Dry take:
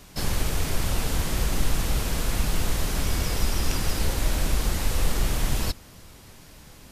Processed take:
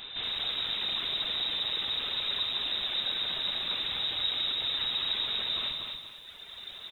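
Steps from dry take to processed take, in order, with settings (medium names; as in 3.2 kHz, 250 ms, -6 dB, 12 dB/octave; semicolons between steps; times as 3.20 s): reverb removal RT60 1.7 s; high-pass 47 Hz 12 dB/octave; peaking EQ 190 Hz +8 dB 0.74 oct; in parallel at -0.5 dB: compression, threshold -37 dBFS, peak gain reduction 14 dB; on the sum: saturation -31.5 dBFS, distortion -7 dB; on a send: multi-tap echo 55/74/158 ms -12.5/-19/-10.5 dB; on the sum: frequency inversion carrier 3.8 kHz; bit-crushed delay 238 ms, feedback 35%, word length 10-bit, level -4.5 dB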